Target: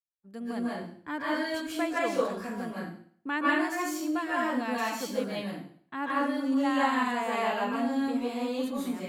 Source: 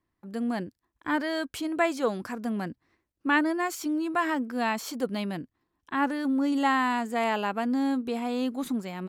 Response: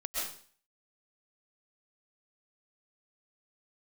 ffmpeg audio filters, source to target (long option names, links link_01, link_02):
-filter_complex "[0:a]agate=range=-33dB:threshold=-39dB:ratio=3:detection=peak[link_01];[1:a]atrim=start_sample=2205,asetrate=38367,aresample=44100[link_02];[link_01][link_02]afir=irnorm=-1:irlink=0,volume=-6dB"